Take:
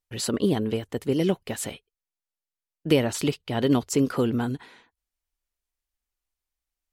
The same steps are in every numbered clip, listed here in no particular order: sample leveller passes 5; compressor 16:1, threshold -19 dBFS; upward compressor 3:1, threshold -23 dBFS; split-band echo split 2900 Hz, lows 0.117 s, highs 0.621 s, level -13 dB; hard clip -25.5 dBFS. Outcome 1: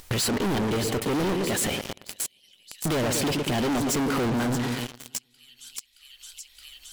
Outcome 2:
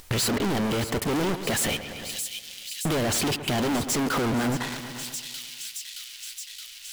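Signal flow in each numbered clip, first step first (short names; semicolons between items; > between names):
split-band echo > sample leveller > compressor > hard clip > upward compressor; compressor > sample leveller > hard clip > split-band echo > upward compressor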